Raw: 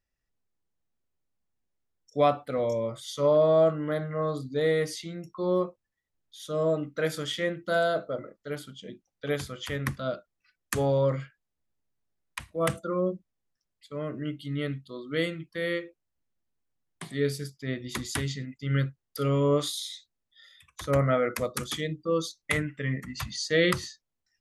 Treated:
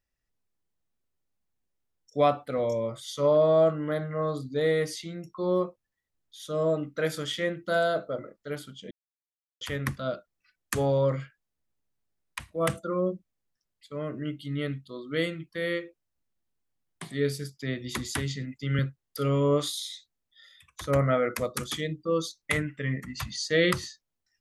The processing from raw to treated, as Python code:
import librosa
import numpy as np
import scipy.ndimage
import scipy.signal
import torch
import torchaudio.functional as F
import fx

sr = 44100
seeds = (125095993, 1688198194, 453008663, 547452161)

y = fx.band_squash(x, sr, depth_pct=40, at=(17.59, 18.79))
y = fx.edit(y, sr, fx.silence(start_s=8.91, length_s=0.7), tone=tone)